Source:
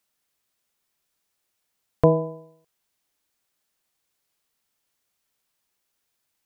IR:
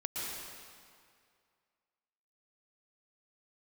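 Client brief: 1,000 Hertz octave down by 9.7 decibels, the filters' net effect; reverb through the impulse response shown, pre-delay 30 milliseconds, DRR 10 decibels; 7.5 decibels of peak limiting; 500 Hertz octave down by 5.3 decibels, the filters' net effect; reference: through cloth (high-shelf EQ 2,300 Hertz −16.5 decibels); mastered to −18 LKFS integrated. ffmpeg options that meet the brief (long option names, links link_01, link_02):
-filter_complex "[0:a]equalizer=frequency=500:width_type=o:gain=-3,equalizer=frequency=1000:width_type=o:gain=-7.5,alimiter=limit=-14dB:level=0:latency=1,asplit=2[link_01][link_02];[1:a]atrim=start_sample=2205,adelay=30[link_03];[link_02][link_03]afir=irnorm=-1:irlink=0,volume=-13.5dB[link_04];[link_01][link_04]amix=inputs=2:normalize=0,highshelf=frequency=2300:gain=-16.5,volume=12dB"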